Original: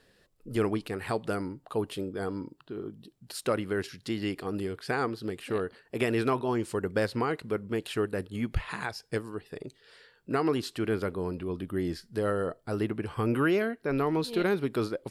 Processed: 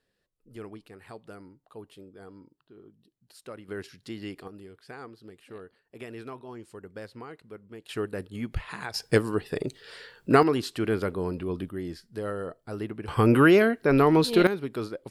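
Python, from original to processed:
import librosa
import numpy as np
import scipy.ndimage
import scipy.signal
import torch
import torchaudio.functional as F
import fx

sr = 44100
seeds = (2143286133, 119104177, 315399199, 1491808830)

y = fx.gain(x, sr, db=fx.steps((0.0, -14.0), (3.68, -6.0), (4.48, -13.5), (7.89, -2.0), (8.94, 10.0), (10.43, 2.5), (11.69, -4.0), (13.08, 8.0), (14.47, -3.0)))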